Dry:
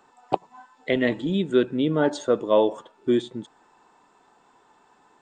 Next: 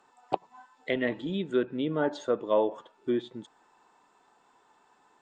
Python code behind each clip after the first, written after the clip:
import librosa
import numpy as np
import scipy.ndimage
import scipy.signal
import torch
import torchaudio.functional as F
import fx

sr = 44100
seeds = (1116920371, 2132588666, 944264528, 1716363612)

y = fx.env_lowpass_down(x, sr, base_hz=2100.0, full_db=-16.0)
y = fx.low_shelf(y, sr, hz=400.0, db=-5.0)
y = F.gain(torch.from_numpy(y), -4.0).numpy()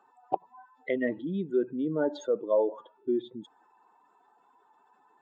y = fx.spec_expand(x, sr, power=1.7)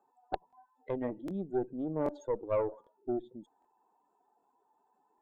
y = fx.band_shelf(x, sr, hz=2500.0, db=-12.5, octaves=2.6)
y = fx.cheby_harmonics(y, sr, harmonics=(6,), levels_db=(-19,), full_scale_db=-11.0)
y = fx.buffer_crackle(y, sr, first_s=0.48, period_s=0.78, block=1024, kind='repeat')
y = F.gain(torch.from_numpy(y), -6.0).numpy()